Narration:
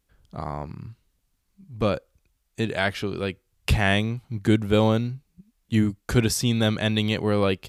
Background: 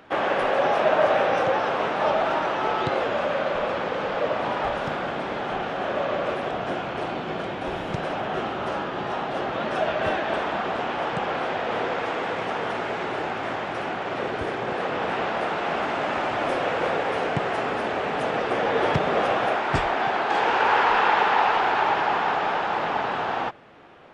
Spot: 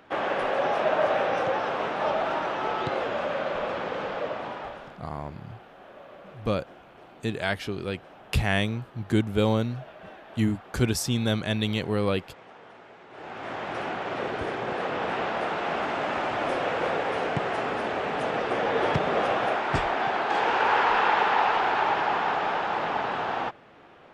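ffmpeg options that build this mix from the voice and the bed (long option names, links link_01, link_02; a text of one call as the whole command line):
ffmpeg -i stem1.wav -i stem2.wav -filter_complex "[0:a]adelay=4650,volume=-3.5dB[link_01];[1:a]volume=14.5dB,afade=type=out:start_time=4:duration=0.99:silence=0.141254,afade=type=in:start_time=13.09:duration=0.66:silence=0.11885[link_02];[link_01][link_02]amix=inputs=2:normalize=0" out.wav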